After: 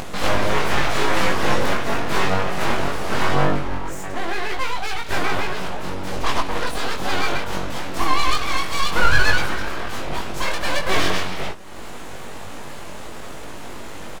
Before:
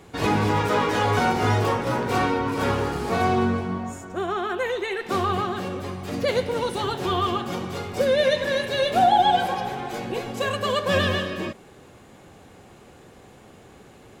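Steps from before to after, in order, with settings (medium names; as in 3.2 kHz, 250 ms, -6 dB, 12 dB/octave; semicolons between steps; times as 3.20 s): upward compressor, threshold -25 dBFS; wow and flutter 47 cents; full-wave rectifier; early reflections 21 ms -3.5 dB, 64 ms -16.5 dB; 5.95–6.66 s: loudspeaker Doppler distortion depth 0.54 ms; trim +3 dB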